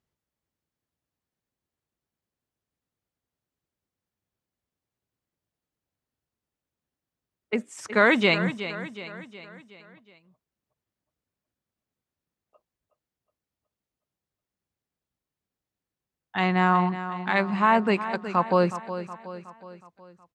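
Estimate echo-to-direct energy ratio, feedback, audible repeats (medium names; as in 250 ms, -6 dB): -10.5 dB, 51%, 4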